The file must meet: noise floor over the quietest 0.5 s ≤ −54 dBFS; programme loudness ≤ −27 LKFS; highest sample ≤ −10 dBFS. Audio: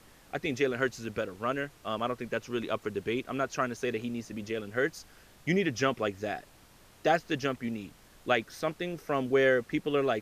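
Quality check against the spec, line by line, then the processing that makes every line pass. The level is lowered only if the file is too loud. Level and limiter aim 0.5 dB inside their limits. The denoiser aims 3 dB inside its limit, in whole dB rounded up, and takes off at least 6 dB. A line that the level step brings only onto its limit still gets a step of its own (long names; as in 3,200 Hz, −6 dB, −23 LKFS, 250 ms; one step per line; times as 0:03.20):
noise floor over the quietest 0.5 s −57 dBFS: in spec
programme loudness −31.5 LKFS: in spec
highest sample −13.0 dBFS: in spec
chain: no processing needed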